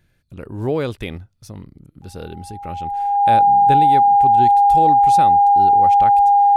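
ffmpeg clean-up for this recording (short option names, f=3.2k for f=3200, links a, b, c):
-af "bandreject=f=810:w=30"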